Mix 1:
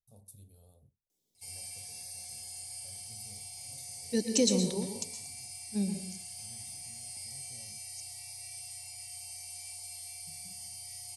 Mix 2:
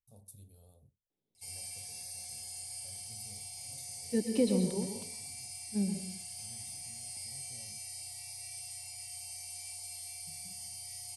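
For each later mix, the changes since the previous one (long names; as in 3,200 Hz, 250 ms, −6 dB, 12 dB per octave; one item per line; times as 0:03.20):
second voice: add high-frequency loss of the air 440 metres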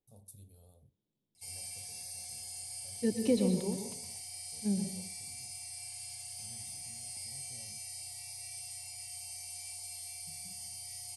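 second voice: entry −1.10 s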